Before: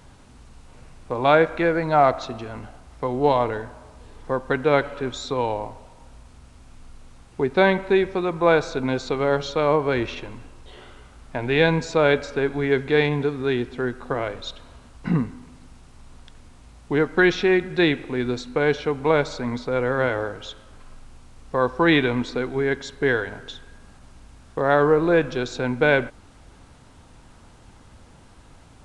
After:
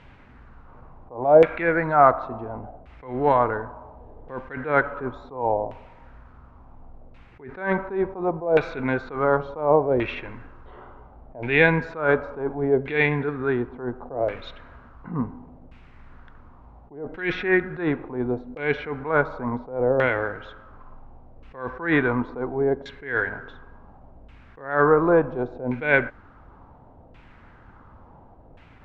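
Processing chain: LFO low-pass saw down 0.7 Hz 600–2600 Hz; attack slew limiter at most 130 dB/s; gain -1 dB

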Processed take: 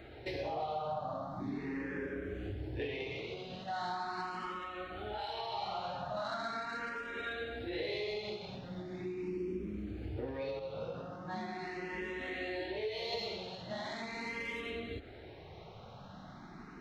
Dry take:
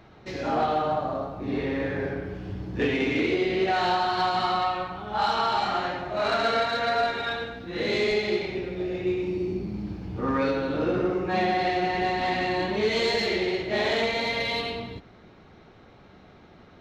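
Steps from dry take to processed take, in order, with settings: 10.59–13.13 resonator 54 Hz, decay 0.2 s, harmonics all, mix 100%; compressor 6:1, threshold -38 dBFS, peak gain reduction 16 dB; endless phaser +0.4 Hz; gain +3.5 dB

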